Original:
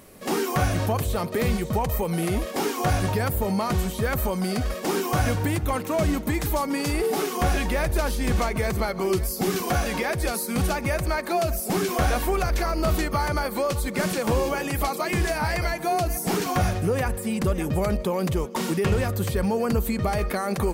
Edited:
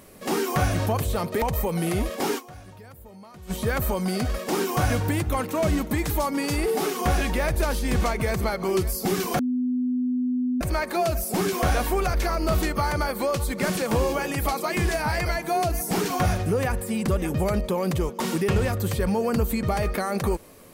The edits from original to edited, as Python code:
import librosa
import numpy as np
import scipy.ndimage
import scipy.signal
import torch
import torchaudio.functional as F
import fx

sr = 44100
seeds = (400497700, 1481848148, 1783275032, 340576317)

y = fx.edit(x, sr, fx.cut(start_s=1.42, length_s=0.36),
    fx.fade_down_up(start_s=2.74, length_s=1.13, db=-21.0, fade_s=0.17, curve='exp'),
    fx.bleep(start_s=9.75, length_s=1.22, hz=250.0, db=-21.5), tone=tone)